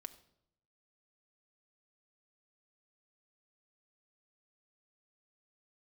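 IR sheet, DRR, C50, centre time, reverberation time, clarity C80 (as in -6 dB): 7.5 dB, 15.0 dB, 5 ms, 0.75 s, 17.5 dB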